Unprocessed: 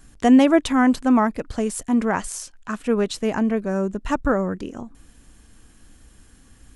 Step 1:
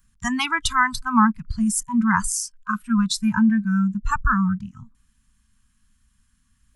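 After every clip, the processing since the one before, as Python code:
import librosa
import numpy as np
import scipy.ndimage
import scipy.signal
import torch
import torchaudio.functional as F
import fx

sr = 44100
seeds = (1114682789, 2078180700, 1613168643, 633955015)

y = scipy.signal.sosfilt(scipy.signal.ellip(3, 1.0, 50, [230.0, 1000.0], 'bandstop', fs=sr, output='sos'), x)
y = fx.noise_reduce_blind(y, sr, reduce_db=20)
y = F.gain(torch.from_numpy(y), 7.0).numpy()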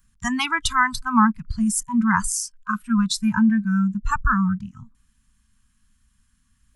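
y = x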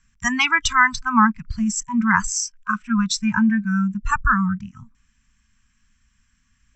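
y = scipy.signal.sosfilt(scipy.signal.cheby1(6, 9, 7800.0, 'lowpass', fs=sr, output='sos'), x)
y = F.gain(torch.from_numpy(y), 8.5).numpy()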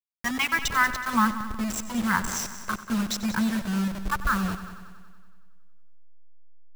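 y = fx.delta_hold(x, sr, step_db=-21.5)
y = fx.echo_heads(y, sr, ms=93, heads='first and second', feedback_pct=54, wet_db=-15.5)
y = F.gain(torch.from_numpy(y), -6.5).numpy()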